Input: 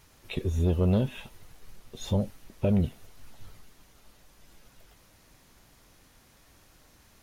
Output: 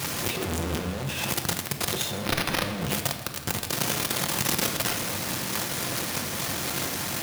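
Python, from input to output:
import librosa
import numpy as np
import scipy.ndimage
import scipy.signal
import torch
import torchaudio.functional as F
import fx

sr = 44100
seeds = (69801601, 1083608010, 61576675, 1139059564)

y = np.sign(x) * np.sqrt(np.mean(np.square(x)))
y = scipy.signal.sosfilt(scipy.signal.butter(4, 90.0, 'highpass', fs=sr, output='sos'), y)
y = fx.over_compress(y, sr, threshold_db=-37.0, ratio=-0.5)
y = fx.sample_hold(y, sr, seeds[0], rate_hz=7600.0, jitter_pct=0, at=(2.19, 2.78))
y = fx.echo_thinned(y, sr, ms=162, feedback_pct=76, hz=420.0, wet_db=-18.5)
y = fx.room_shoebox(y, sr, seeds[1], volume_m3=860.0, walls='mixed', distance_m=0.84)
y = y * librosa.db_to_amplitude(8.5)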